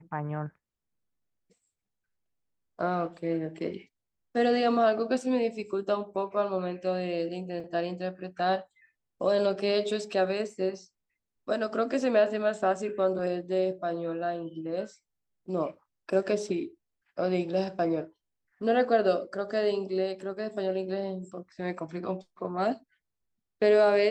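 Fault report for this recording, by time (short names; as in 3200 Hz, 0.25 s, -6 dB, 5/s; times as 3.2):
7.6 gap 3.2 ms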